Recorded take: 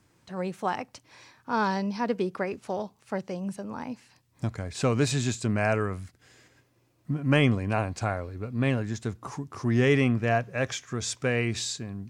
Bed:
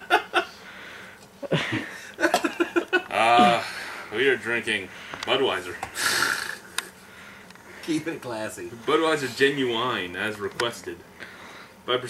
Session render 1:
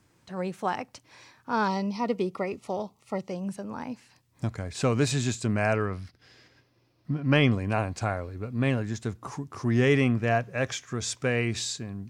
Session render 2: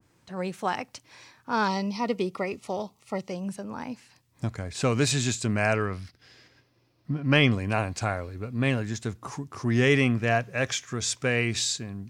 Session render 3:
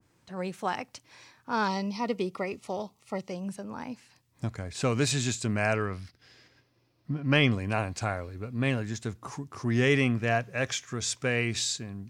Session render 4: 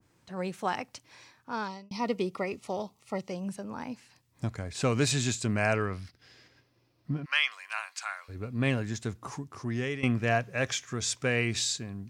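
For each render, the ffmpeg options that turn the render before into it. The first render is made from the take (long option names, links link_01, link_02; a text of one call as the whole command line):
ffmpeg -i in.wav -filter_complex "[0:a]asettb=1/sr,asplit=3[link_01][link_02][link_03];[link_01]atrim=end=1.684[link_04];[link_02]atrim=start=1.68:end=3.32,asetpts=PTS-STARTPTS,afade=type=in:duration=0.004:curve=qsin,afade=type=out:start_time=1.636:duration=0.004:curve=qsin,asuperstop=centerf=1600:order=12:qfactor=4.1[link_05];[link_03]atrim=start=3.316[link_06];[link_04][link_05]acrossfade=duration=0.004:curve1=hsin:curve2=qsin[link_07];[link_07][link_06]acrossfade=duration=0.004:curve1=qsin:curve2=hsin,asettb=1/sr,asplit=3[link_08][link_09][link_10];[link_08]atrim=end=5.744[link_11];[link_09]atrim=start=5.74:end=7.52,asetpts=PTS-STARTPTS,afade=type=in:duration=0.004:curve=qsin,afade=type=out:start_time=1.776:duration=0.004:curve=qsin,highshelf=frequency=6100:width_type=q:width=3:gain=-6[link_12];[link_10]atrim=start=7.516[link_13];[link_11][link_12]acrossfade=duration=0.004:curve1=hsin:curve2=qsin[link_14];[link_14][link_13]acrossfade=duration=0.004:curve1=qsin:curve2=hsin" out.wav
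ffmpeg -i in.wav -af "adynamicequalizer=threshold=0.01:dfrequency=1600:dqfactor=0.7:tfrequency=1600:tqfactor=0.7:attack=5:release=100:ratio=0.375:range=2.5:mode=boostabove:tftype=highshelf" out.wav
ffmpeg -i in.wav -af "volume=-2.5dB" out.wav
ffmpeg -i in.wav -filter_complex "[0:a]asplit=3[link_01][link_02][link_03];[link_01]afade=type=out:start_time=7.24:duration=0.02[link_04];[link_02]highpass=frequency=1100:width=0.5412,highpass=frequency=1100:width=1.3066,afade=type=in:start_time=7.24:duration=0.02,afade=type=out:start_time=8.28:duration=0.02[link_05];[link_03]afade=type=in:start_time=8.28:duration=0.02[link_06];[link_04][link_05][link_06]amix=inputs=3:normalize=0,asplit=3[link_07][link_08][link_09];[link_07]atrim=end=1.91,asetpts=PTS-STARTPTS,afade=type=out:start_time=0.93:duration=0.98:curve=qsin[link_10];[link_08]atrim=start=1.91:end=10.03,asetpts=PTS-STARTPTS,afade=type=in:duration=0.004:curve=hsin,afade=type=out:start_time=7.42:duration=0.7:silence=0.16788[link_11];[link_09]atrim=start=10.03,asetpts=PTS-STARTPTS,afade=type=in:duration=0.004:curve=hsin:silence=0.16788[link_12];[link_10][link_11][link_12]concat=n=3:v=0:a=1" out.wav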